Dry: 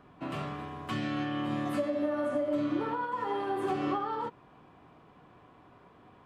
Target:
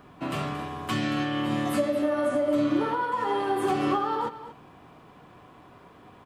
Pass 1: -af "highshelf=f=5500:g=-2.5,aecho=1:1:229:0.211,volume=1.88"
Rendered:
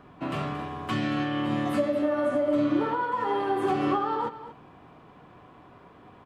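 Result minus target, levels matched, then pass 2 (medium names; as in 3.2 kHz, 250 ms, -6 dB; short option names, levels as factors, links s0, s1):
8 kHz band -8.0 dB
-af "highshelf=f=5500:g=9.5,aecho=1:1:229:0.211,volume=1.88"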